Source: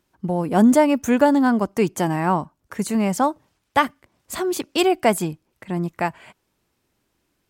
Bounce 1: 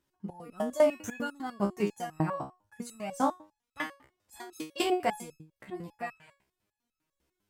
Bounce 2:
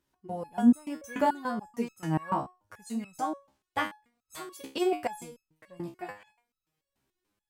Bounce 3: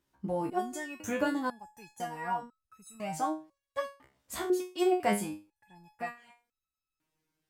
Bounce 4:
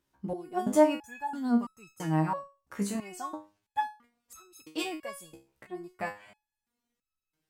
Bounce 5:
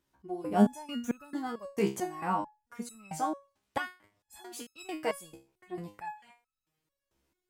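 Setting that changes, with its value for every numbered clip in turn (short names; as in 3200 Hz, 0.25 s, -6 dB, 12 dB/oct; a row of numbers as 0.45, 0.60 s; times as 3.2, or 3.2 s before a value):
stepped resonator, rate: 10, 6.9, 2, 3, 4.5 Hz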